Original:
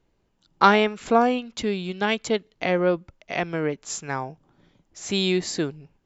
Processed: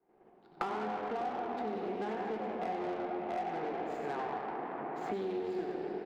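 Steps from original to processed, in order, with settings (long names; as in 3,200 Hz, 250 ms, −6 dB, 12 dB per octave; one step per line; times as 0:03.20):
running median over 15 samples
downward compressor 4 to 1, threshold −33 dBFS, peak gain reduction 18 dB
three-way crossover with the lows and the highs turned down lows −13 dB, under 380 Hz, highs −23 dB, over 3,000 Hz
echo with shifted repeats 92 ms, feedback 52%, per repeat +89 Hz, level −5 dB
rectangular room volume 200 cubic metres, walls hard, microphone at 0.42 metres
tube saturation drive 36 dB, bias 0.7
hollow resonant body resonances 220/360/730 Hz, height 13 dB, ringing for 35 ms
downward expander −57 dBFS
low-shelf EQ 150 Hz −10.5 dB
multiband upward and downward compressor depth 100%
level −3 dB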